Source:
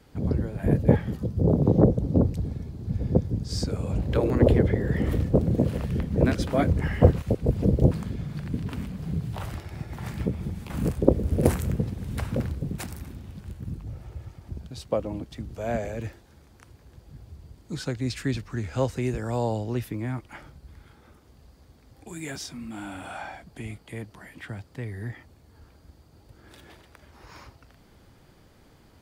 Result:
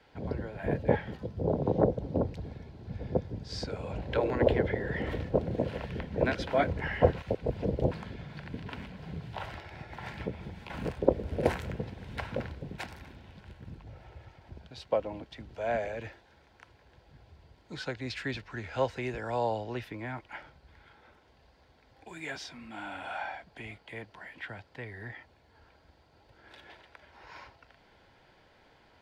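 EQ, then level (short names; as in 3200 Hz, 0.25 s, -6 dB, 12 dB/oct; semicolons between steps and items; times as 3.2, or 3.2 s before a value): Butterworth band-stop 1200 Hz, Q 7.3; three-band isolator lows -13 dB, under 500 Hz, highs -21 dB, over 4500 Hz; +1.5 dB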